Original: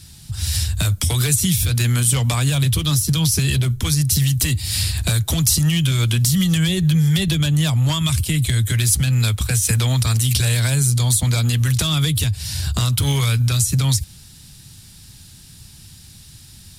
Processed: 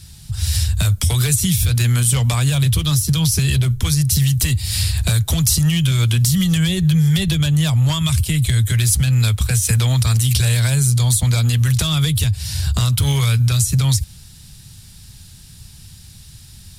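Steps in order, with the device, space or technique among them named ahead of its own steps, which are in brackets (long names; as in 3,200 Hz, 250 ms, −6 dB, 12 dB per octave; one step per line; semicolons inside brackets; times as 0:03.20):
low shelf boost with a cut just above (low-shelf EQ 94 Hz +6.5 dB; parametric band 290 Hz −5 dB 0.52 octaves)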